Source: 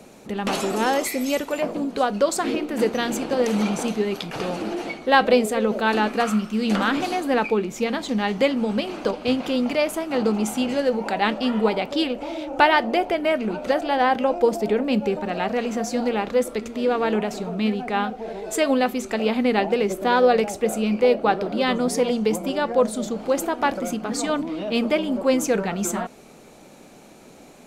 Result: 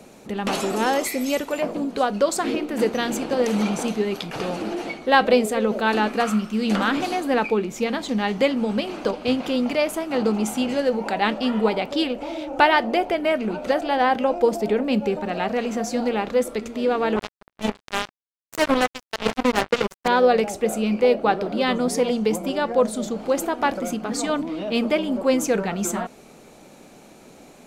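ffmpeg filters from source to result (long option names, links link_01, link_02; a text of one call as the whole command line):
ffmpeg -i in.wav -filter_complex "[0:a]asettb=1/sr,asplit=3[link_01][link_02][link_03];[link_01]atrim=end=17.164[link_04];[link_02]atrim=start=17.16:end=20.08,asetpts=PTS-STARTPTS,afade=type=in:duration=0.004:curve=qsin,afade=type=out:start_time=2.916:duration=0.004:curve=qsin,acrusher=bits=2:mix=0:aa=0.5[link_05];[link_03]atrim=start=20.076[link_06];[link_04][link_05]acrossfade=duration=0.004:curve1=hsin:curve2=qsin[link_07];[link_07][link_06]acrossfade=duration=0.004:curve1=qsin:curve2=hsin" out.wav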